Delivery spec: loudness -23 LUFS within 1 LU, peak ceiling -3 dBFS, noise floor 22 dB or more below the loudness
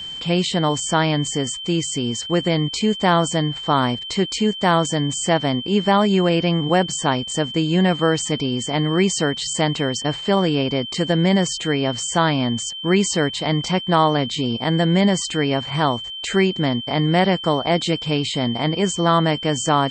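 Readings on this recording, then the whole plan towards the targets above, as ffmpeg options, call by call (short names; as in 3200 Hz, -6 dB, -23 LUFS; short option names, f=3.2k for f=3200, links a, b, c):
steady tone 3100 Hz; tone level -29 dBFS; loudness -20.0 LUFS; peak -4.5 dBFS; loudness target -23.0 LUFS
-> -af "bandreject=f=3.1k:w=30"
-af "volume=-3dB"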